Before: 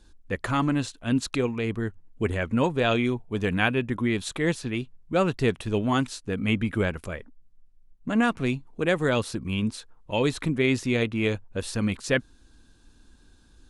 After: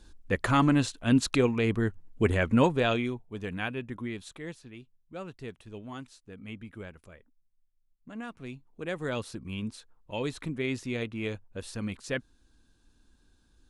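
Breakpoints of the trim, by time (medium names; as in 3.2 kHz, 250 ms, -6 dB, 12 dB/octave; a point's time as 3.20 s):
2.60 s +1.5 dB
3.28 s -10 dB
4.02 s -10 dB
4.65 s -17.5 dB
8.25 s -17.5 dB
9.13 s -8.5 dB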